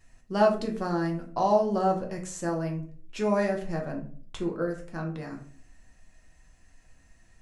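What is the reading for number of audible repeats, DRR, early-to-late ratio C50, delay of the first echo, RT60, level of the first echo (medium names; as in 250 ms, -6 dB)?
no echo, 1.0 dB, 9.0 dB, no echo, 0.45 s, no echo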